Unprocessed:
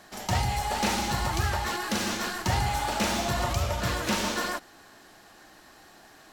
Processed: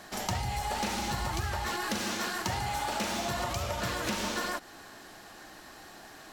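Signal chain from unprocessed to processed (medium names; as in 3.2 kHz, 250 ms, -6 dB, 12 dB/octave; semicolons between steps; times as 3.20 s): 2.01–4.05 s: bass shelf 82 Hz -10.5 dB; compression, threshold -33 dBFS, peak gain reduction 11.5 dB; trim +3.5 dB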